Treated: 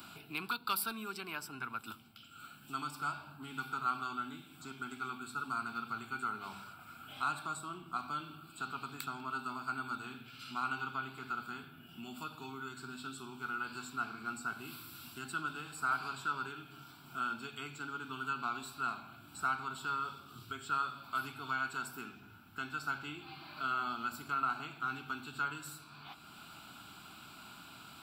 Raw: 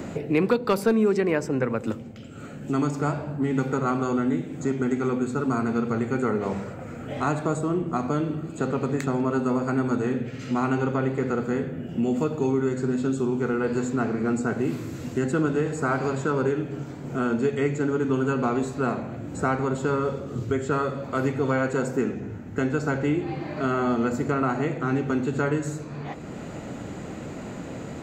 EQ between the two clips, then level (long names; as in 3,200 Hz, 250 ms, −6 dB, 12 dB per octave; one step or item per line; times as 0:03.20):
first-order pre-emphasis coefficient 0.97
parametric band 1,400 Hz +8.5 dB 0.22 octaves
phaser with its sweep stopped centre 1,900 Hz, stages 6
+6.0 dB